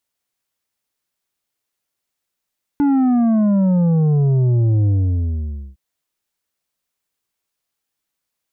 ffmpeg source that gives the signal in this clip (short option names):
-f lavfi -i "aevalsrc='0.224*clip((2.96-t)/0.89,0,1)*tanh(2.24*sin(2*PI*290*2.96/log(65/290)*(exp(log(65/290)*t/2.96)-1)))/tanh(2.24)':d=2.96:s=44100"